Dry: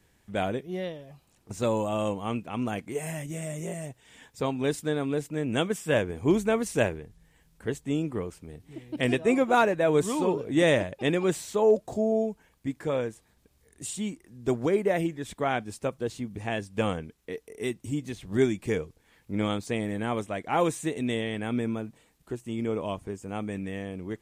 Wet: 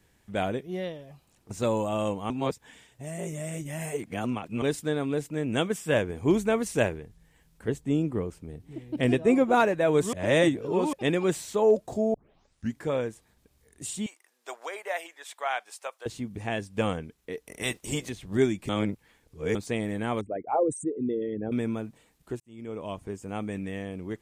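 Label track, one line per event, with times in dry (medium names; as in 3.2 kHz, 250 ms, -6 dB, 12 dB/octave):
2.300000	4.620000	reverse
7.680000	9.600000	tilt shelf lows +3.5 dB, about 710 Hz
10.130000	10.930000	reverse
12.140000	12.140000	tape start 0.64 s
14.060000	16.060000	high-pass 680 Hz 24 dB/octave
17.460000	18.080000	spectral peaks clipped ceiling under each frame's peak by 20 dB
18.690000	19.550000	reverse
20.210000	21.520000	resonances exaggerated exponent 3
22.400000	23.140000	fade in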